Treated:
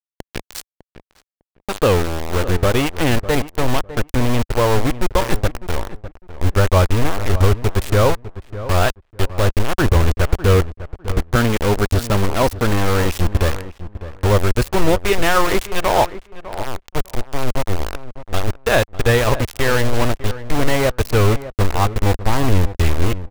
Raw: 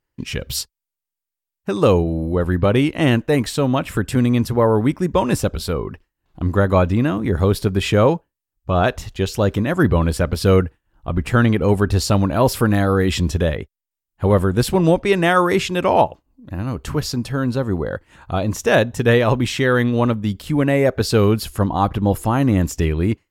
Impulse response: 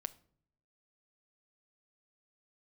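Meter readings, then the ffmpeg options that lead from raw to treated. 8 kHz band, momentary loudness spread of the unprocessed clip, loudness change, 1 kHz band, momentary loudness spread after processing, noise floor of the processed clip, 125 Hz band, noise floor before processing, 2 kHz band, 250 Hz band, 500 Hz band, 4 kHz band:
+1.5 dB, 10 LU, -0.5 dB, +0.5 dB, 13 LU, -84 dBFS, +0.5 dB, -85 dBFS, +1.0 dB, -4.5 dB, -1.5 dB, +1.5 dB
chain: -filter_complex "[0:a]aeval=exprs='val(0)*gte(abs(val(0)),0.15)':c=same,asubboost=boost=10:cutoff=53,asplit=2[a][b];[b]adelay=603,lowpass=f=1.6k:p=1,volume=-13.5dB,asplit=2[c][d];[d]adelay=603,lowpass=f=1.6k:p=1,volume=0.19[e];[a][c][e]amix=inputs=3:normalize=0"

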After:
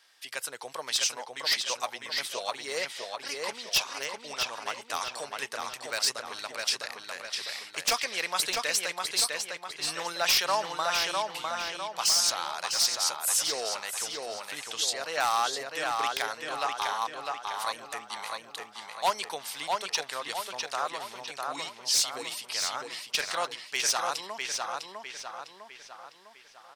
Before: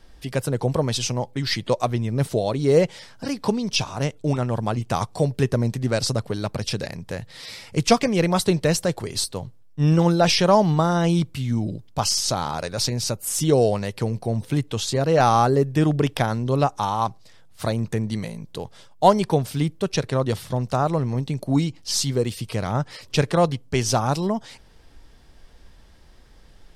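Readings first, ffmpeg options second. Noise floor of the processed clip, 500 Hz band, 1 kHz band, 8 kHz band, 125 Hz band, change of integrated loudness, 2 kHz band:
-52 dBFS, -15.0 dB, -6.5 dB, 0.0 dB, -36.5 dB, -7.0 dB, +0.5 dB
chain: -filter_complex "[0:a]highpass=1.4k,aeval=exprs='0.141*(abs(mod(val(0)/0.141+3,4)-2)-1)':c=same,asplit=2[a][b];[b]adelay=653,lowpass=f=4.8k:p=1,volume=-3dB,asplit=2[c][d];[d]adelay=653,lowpass=f=4.8k:p=1,volume=0.5,asplit=2[e][f];[f]adelay=653,lowpass=f=4.8k:p=1,volume=0.5,asplit=2[g][h];[h]adelay=653,lowpass=f=4.8k:p=1,volume=0.5,asplit=2[i][j];[j]adelay=653,lowpass=f=4.8k:p=1,volume=0.5,asplit=2[k][l];[l]adelay=653,lowpass=f=4.8k:p=1,volume=0.5,asplit=2[m][n];[n]adelay=653,lowpass=f=4.8k:p=1,volume=0.5[o];[a][c][e][g][i][k][m][o]amix=inputs=8:normalize=0"

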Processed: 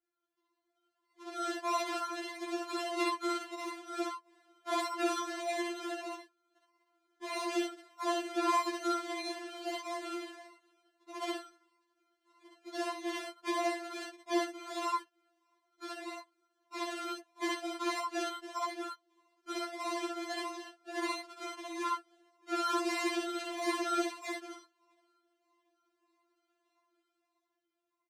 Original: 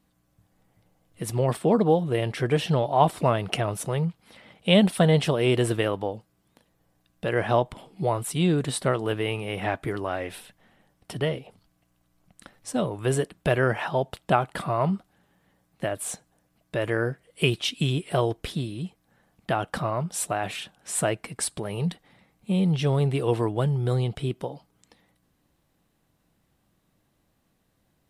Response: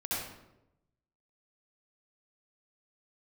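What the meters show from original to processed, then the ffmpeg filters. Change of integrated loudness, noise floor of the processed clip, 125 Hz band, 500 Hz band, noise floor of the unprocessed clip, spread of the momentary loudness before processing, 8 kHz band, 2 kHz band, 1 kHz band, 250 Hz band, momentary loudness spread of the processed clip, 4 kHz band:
-10.5 dB, -83 dBFS, under -40 dB, -13.0 dB, -70 dBFS, 12 LU, -10.5 dB, -7.5 dB, -6.0 dB, -10.5 dB, 12 LU, -8.5 dB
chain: -filter_complex "[0:a]equalizer=f=480:t=o:w=0.62:g=-7.5,bandreject=f=2.6k:w=12,aecho=1:1:7.3:0.35,aeval=exprs='val(0)*sin(2*PI*1200*n/s)':c=same,acrusher=samples=38:mix=1:aa=0.000001:lfo=1:lforange=22.8:lforate=1.6,dynaudnorm=f=280:g=9:m=11.5dB,highpass=280,lowpass=7.4k[a];[1:a]atrim=start_sample=2205,atrim=end_sample=3087[b];[a][b]afir=irnorm=-1:irlink=0,afftfilt=real='re*4*eq(mod(b,16),0)':imag='im*4*eq(mod(b,16),0)':win_size=2048:overlap=0.75,volume=-8dB"

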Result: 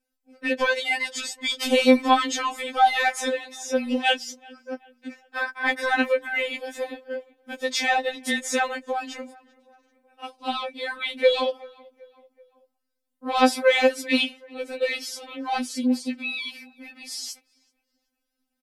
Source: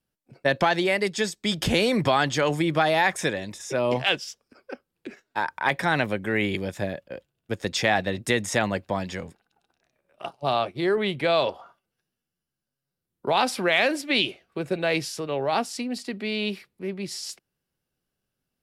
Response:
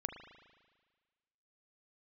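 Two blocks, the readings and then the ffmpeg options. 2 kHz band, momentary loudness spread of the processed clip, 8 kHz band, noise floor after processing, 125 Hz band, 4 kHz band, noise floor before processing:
+1.0 dB, 18 LU, +1.5 dB, -80 dBFS, under -25 dB, +0.5 dB, -85 dBFS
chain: -filter_complex "[0:a]acontrast=85,asplit=2[a][b];[b]adelay=382,lowpass=f=2.2k:p=1,volume=-24dB,asplit=2[c][d];[d]adelay=382,lowpass=f=2.2k:p=1,volume=0.53,asplit=2[e][f];[f]adelay=382,lowpass=f=2.2k:p=1,volume=0.53[g];[c][e][g]amix=inputs=3:normalize=0[h];[a][h]amix=inputs=2:normalize=0,afftfilt=real='re*3.46*eq(mod(b,12),0)':imag='im*3.46*eq(mod(b,12),0)':win_size=2048:overlap=0.75,volume=-3.5dB"

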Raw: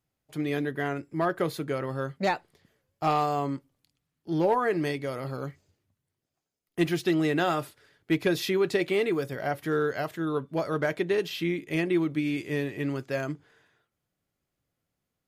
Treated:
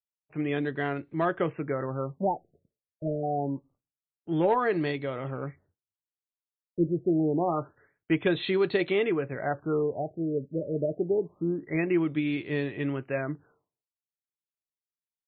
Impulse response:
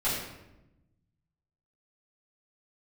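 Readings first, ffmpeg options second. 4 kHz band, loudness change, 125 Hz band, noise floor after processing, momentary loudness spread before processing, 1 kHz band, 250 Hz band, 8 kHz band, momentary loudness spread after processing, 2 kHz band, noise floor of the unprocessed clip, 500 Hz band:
-4.5 dB, -0.5 dB, 0.0 dB, under -85 dBFS, 9 LU, -2.5 dB, 0.0 dB, under -30 dB, 9 LU, -2.5 dB, -84 dBFS, 0.0 dB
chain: -af "agate=range=-33dB:threshold=-53dB:ratio=3:detection=peak,afftfilt=real='re*lt(b*sr/1024,620*pow(4500/620,0.5+0.5*sin(2*PI*0.26*pts/sr)))':imag='im*lt(b*sr/1024,620*pow(4500/620,0.5+0.5*sin(2*PI*0.26*pts/sr)))':win_size=1024:overlap=0.75"

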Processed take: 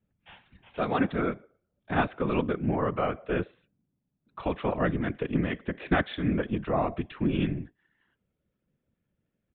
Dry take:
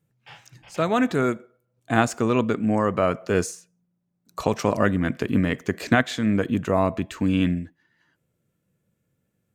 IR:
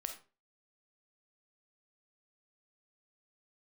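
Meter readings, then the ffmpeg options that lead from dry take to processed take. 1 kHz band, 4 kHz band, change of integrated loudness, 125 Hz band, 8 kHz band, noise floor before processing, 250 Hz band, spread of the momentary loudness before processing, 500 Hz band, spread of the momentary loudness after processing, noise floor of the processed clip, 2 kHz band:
-5.0 dB, -7.5 dB, -6.0 dB, -5.0 dB, under -40 dB, -75 dBFS, -6.5 dB, 8 LU, -6.0 dB, 7 LU, -82 dBFS, -6.5 dB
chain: -af "afftfilt=real='hypot(re,im)*cos(2*PI*random(0))':imag='hypot(re,im)*sin(2*PI*random(1))':win_size=512:overlap=0.75,aresample=8000,aresample=44100"

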